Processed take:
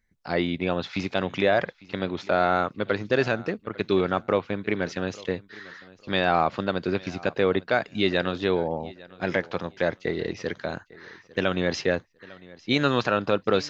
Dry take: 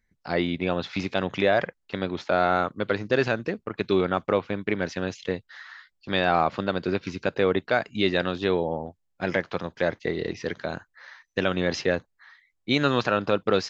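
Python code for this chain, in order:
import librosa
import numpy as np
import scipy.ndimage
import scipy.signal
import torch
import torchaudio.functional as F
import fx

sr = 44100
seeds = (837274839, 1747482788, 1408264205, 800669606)

y = fx.echo_feedback(x, sr, ms=851, feedback_pct=22, wet_db=-21.5)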